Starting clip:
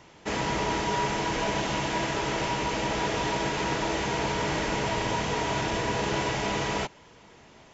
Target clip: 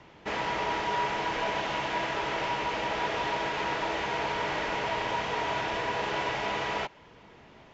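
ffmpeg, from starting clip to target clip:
ffmpeg -i in.wav -filter_complex "[0:a]lowpass=3600,acrossover=split=460|1100[link_01][link_02][link_03];[link_01]acompressor=threshold=-42dB:ratio=5[link_04];[link_04][link_02][link_03]amix=inputs=3:normalize=0" out.wav

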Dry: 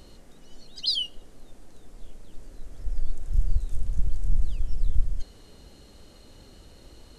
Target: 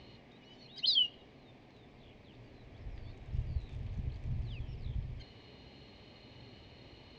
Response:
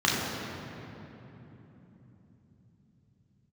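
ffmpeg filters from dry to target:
-af "highpass=100,equalizer=frequency=120:width_type=q:width=4:gain=7,equalizer=frequency=170:width_type=q:width=4:gain=-6,equalizer=frequency=320:width_type=q:width=4:gain=-4,equalizer=frequency=510:width_type=q:width=4:gain=-5,equalizer=frequency=1400:width_type=q:width=4:gain=-10,equalizer=frequency=2300:width_type=q:width=4:gain=7,lowpass=frequency=4000:width=0.5412,lowpass=frequency=4000:width=1.3066"

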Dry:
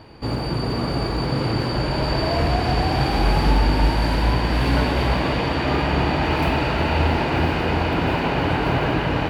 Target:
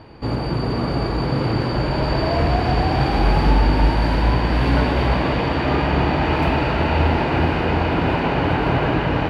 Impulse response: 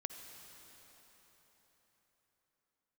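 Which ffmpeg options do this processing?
-af "lowpass=frequency=3100:poles=1,volume=2dB"

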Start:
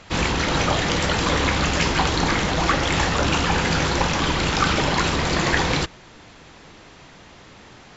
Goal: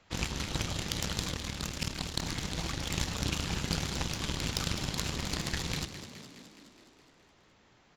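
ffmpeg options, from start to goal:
ffmpeg -i in.wav -filter_complex "[0:a]acrossover=split=230|3000[link_01][link_02][link_03];[link_02]acompressor=threshold=-33dB:ratio=6[link_04];[link_01][link_04][link_03]amix=inputs=3:normalize=0,aeval=exprs='0.631*(cos(1*acos(clip(val(0)/0.631,-1,1)))-cos(1*PI/2))+0.0794*(cos(7*acos(clip(val(0)/0.631,-1,1)))-cos(7*PI/2))':channel_layout=same,asettb=1/sr,asplit=3[link_05][link_06][link_07];[link_05]atrim=end=1.314[link_08];[link_06]atrim=start=1.31:end=2.25,asetpts=PTS-STARTPTS,afade=type=in:duration=0.004:curve=qsin,afade=type=out:start_time=0.936:duration=0.004:curve=qsin,tremolo=f=37:d=0.889[link_09];[link_07]atrim=start=2.246[link_10];[link_08][link_09]acrossfade=duration=0.004:curve1=hsin:curve2=qsin[link_11];[link_11][link_10]acrossfade=duration=0.004:curve1=qsin:curve2=hsin,asplit=2[link_12][link_13];[link_13]asplit=8[link_14][link_15][link_16][link_17][link_18][link_19][link_20][link_21];[link_14]adelay=209,afreqshift=34,volume=-11.5dB[link_22];[link_15]adelay=418,afreqshift=68,volume=-15.4dB[link_23];[link_16]adelay=627,afreqshift=102,volume=-19.3dB[link_24];[link_17]adelay=836,afreqshift=136,volume=-23.1dB[link_25];[link_18]adelay=1045,afreqshift=170,volume=-27dB[link_26];[link_19]adelay=1254,afreqshift=204,volume=-30.9dB[link_27];[link_20]adelay=1463,afreqshift=238,volume=-34.8dB[link_28];[link_21]adelay=1672,afreqshift=272,volume=-38.6dB[link_29];[link_22][link_23][link_24][link_25][link_26][link_27][link_28][link_29]amix=inputs=8:normalize=0[link_30];[link_12][link_30]amix=inputs=2:normalize=0" out.wav

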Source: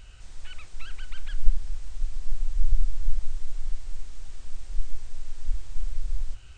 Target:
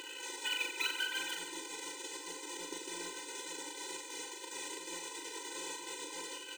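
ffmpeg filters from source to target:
ffmpeg -i in.wav -filter_complex "[0:a]aeval=exprs='if(lt(val(0),0),0.447*val(0),val(0))':channel_layout=same,equalizer=frequency=850:width_type=o:width=0.38:gain=-12.5,acrossover=split=330[link_01][link_02];[link_02]acrusher=bits=3:mode=log:mix=0:aa=0.000001[link_03];[link_01][link_03]amix=inputs=2:normalize=0,superequalizer=8b=2.24:9b=2.82:10b=0.316:14b=0.562,aecho=1:1:40|90|152.5|230.6|328.3:0.631|0.398|0.251|0.158|0.1,afftfilt=real='re*eq(mod(floor(b*sr/1024/260),2),1)':imag='im*eq(mod(floor(b*sr/1024/260),2),1)':win_size=1024:overlap=0.75,volume=16dB" out.wav

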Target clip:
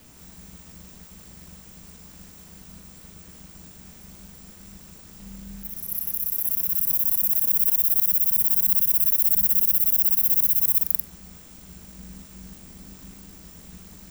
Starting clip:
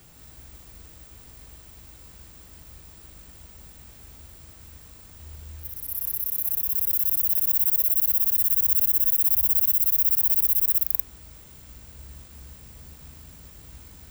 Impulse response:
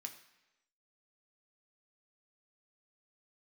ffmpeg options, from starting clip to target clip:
-filter_complex "[0:a]aeval=exprs='val(0)*sin(2*PI*120*n/s)':channel_layout=same,asplit=2[link_01][link_02];[link_02]highshelf=frequency=4600:width_type=q:width=3:gain=6.5[link_03];[1:a]atrim=start_sample=2205,lowpass=8100,adelay=43[link_04];[link_03][link_04]afir=irnorm=-1:irlink=0,volume=-6dB[link_05];[link_01][link_05]amix=inputs=2:normalize=0,volume=4dB"

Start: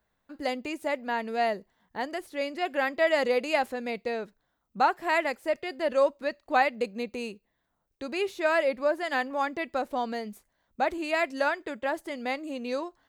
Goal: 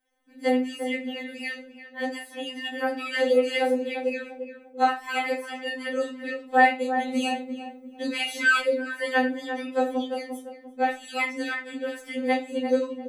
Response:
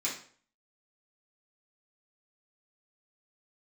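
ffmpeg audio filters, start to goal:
-filter_complex "[0:a]asplit=2[link_01][link_02];[link_02]adelay=346,lowpass=frequency=1100:poles=1,volume=-7dB,asplit=2[link_03][link_04];[link_04]adelay=346,lowpass=frequency=1100:poles=1,volume=0.36,asplit=2[link_05][link_06];[link_06]adelay=346,lowpass=frequency=1100:poles=1,volume=0.36,asplit=2[link_07][link_08];[link_08]adelay=346,lowpass=frequency=1100:poles=1,volume=0.36[link_09];[link_01][link_03][link_05][link_07][link_09]amix=inputs=5:normalize=0[link_10];[1:a]atrim=start_sample=2205,asetrate=66150,aresample=44100[link_11];[link_10][link_11]afir=irnorm=-1:irlink=0,asettb=1/sr,asplit=3[link_12][link_13][link_14];[link_12]atrim=end=7.084[link_15];[link_13]atrim=start=7.08:end=8.61,asetpts=PTS-STARTPTS,afade=type=in:duration=0.004:curve=qsin,afade=type=out:start_time=1.526:duration=0.004:curve=qsin,acontrast=80[link_16];[link_14]atrim=start=8.606[link_17];[link_15][link_16]acrossfade=duration=0.004:curve1=hsin:curve2=qsin[link_18];[link_18][link_17]acrossfade=duration=0.004:curve1=qsin:curve2=hsin,afftfilt=real='re*3.46*eq(mod(b,12),0)':imag='im*3.46*eq(mod(b,12),0)':win_size=2048:overlap=0.75,volume=3dB"

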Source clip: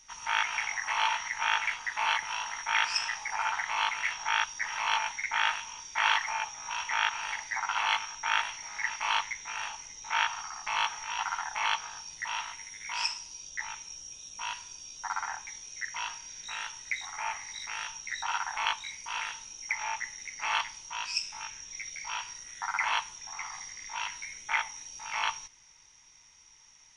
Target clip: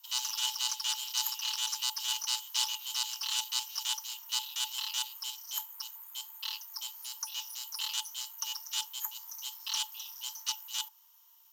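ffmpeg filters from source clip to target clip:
ffmpeg -i in.wav -af "bandreject=frequency=3200:width=6.9,aeval=exprs='0.316*(cos(1*acos(clip(val(0)/0.316,-1,1)))-cos(1*PI/2))+0.02*(cos(8*acos(clip(val(0)/0.316,-1,1)))-cos(8*PI/2))':channel_layout=same,afreqshift=370,asetrate=103194,aresample=44100,volume=-3dB" out.wav

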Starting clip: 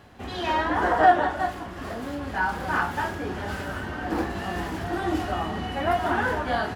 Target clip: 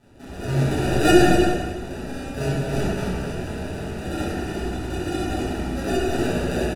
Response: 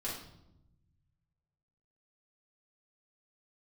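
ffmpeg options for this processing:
-filter_complex "[0:a]asettb=1/sr,asplit=3[link_01][link_02][link_03];[link_01]atrim=end=1.034[link_04];[link_02]atrim=start=1.03:end=1.43,asetpts=PTS-STARTPTS,afade=type=in:duration=0.004:curve=qsin,afade=type=out:start_time=0.396:duration=0.004:curve=qsin,lowshelf=frequency=350:gain=10.5[link_05];[link_03]atrim=start=1.426[link_06];[link_04][link_05]acrossfade=duration=0.004:curve1=hsin:curve2=qsin[link_07];[link_07][link_06]acrossfade=duration=0.004:curve1=qsin:curve2=hsin,acrusher=samples=41:mix=1:aa=0.000001,aecho=1:1:157.4|242:0.282|0.316[link_08];[1:a]atrim=start_sample=2205,afade=type=out:start_time=0.3:duration=0.01,atrim=end_sample=13671,asetrate=24696,aresample=44100[link_09];[link_08][link_09]afir=irnorm=-1:irlink=0,volume=-6.5dB"

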